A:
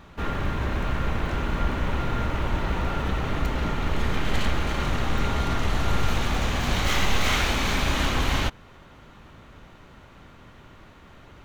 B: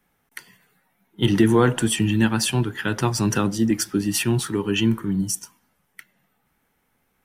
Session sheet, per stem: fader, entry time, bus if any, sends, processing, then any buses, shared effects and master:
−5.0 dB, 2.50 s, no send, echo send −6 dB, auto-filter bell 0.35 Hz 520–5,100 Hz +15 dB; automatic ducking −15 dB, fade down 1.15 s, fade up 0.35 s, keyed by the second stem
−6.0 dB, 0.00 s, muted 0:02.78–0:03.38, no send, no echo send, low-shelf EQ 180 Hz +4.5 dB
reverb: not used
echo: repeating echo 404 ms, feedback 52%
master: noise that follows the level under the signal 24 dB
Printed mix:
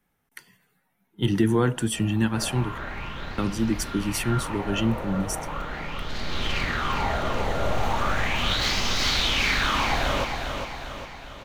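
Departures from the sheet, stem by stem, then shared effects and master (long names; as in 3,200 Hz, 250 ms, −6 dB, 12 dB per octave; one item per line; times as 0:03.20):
stem A: entry 2.50 s → 1.75 s
master: missing noise that follows the level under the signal 24 dB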